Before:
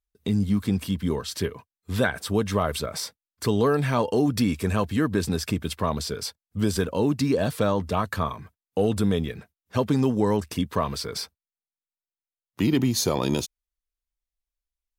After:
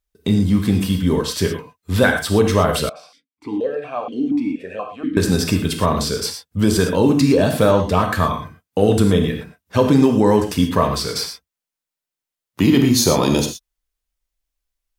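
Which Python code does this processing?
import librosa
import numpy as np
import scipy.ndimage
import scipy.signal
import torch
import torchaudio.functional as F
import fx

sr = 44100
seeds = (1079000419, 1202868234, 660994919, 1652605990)

y = fx.rev_gated(x, sr, seeds[0], gate_ms=140, shape='flat', drr_db=3.5)
y = fx.vowel_held(y, sr, hz=4.2, at=(2.89, 5.17))
y = y * 10.0 ** (7.0 / 20.0)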